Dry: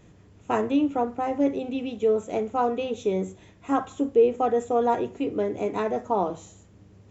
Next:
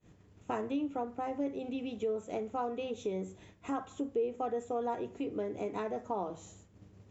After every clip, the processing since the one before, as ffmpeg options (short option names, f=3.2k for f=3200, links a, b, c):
-af "agate=range=-33dB:threshold=-46dB:ratio=3:detection=peak,acompressor=threshold=-41dB:ratio=2"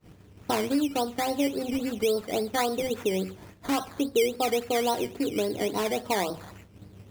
-af "acrusher=samples=13:mix=1:aa=0.000001:lfo=1:lforange=7.8:lforate=3.6,volume=8.5dB"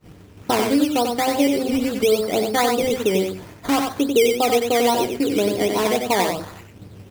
-af "aecho=1:1:93:0.562,volume=7dB"